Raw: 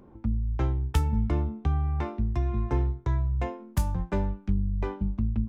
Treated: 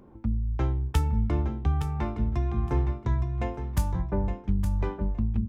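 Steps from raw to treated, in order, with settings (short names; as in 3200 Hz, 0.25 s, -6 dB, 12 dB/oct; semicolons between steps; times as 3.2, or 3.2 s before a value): 4.01–4.48 LPF 1100 Hz 12 dB/oct; on a send: feedback echo 0.865 s, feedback 17%, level -8.5 dB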